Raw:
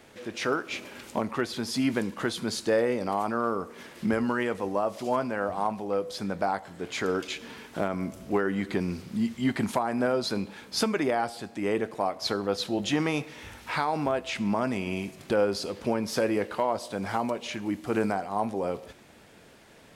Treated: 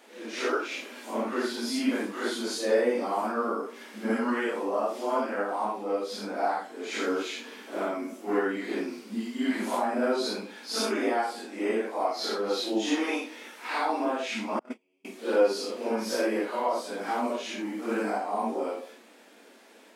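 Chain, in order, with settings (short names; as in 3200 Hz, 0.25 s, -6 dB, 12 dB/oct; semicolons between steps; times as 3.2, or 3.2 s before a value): phase scrambler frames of 0.2 s; 14.59–15.05 gate -24 dBFS, range -40 dB; brick-wall FIR high-pass 210 Hz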